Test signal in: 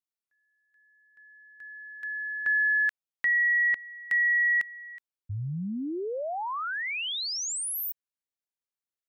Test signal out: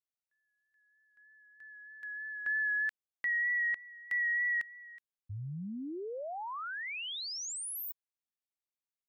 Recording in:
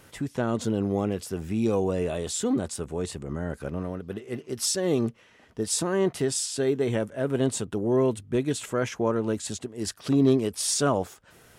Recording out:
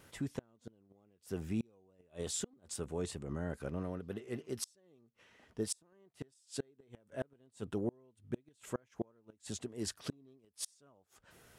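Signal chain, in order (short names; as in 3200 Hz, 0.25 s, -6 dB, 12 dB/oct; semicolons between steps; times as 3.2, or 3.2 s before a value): flipped gate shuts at -18 dBFS, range -34 dB; vibrato 3.2 Hz 25 cents; gain -7.5 dB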